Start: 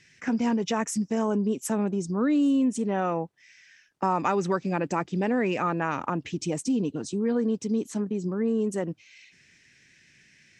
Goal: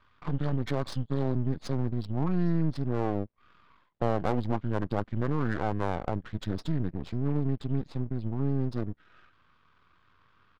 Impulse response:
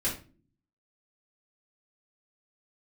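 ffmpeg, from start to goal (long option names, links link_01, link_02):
-af "aeval=exprs='max(val(0),0)':channel_layout=same,asetrate=26990,aresample=44100,atempo=1.63392,adynamicsmooth=sensitivity=6.5:basefreq=2900"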